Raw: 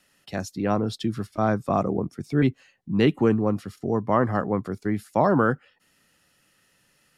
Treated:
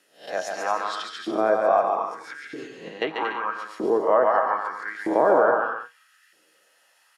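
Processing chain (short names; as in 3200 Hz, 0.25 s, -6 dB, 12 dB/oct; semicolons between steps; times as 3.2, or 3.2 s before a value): spectral swells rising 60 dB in 0.37 s; resonator 160 Hz, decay 0.2 s, harmonics all, mix 60%; 2.33–3.02 negative-ratio compressor -36 dBFS, ratio -1; treble ducked by the level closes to 2500 Hz, closed at -20.5 dBFS; on a send: bouncing-ball echo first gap 0.14 s, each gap 0.65×, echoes 5; on the sum: LFO high-pass saw up 0.79 Hz 340–1800 Hz; small resonant body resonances 1600/3300 Hz, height 6 dB; maximiser +10.5 dB; gain -7 dB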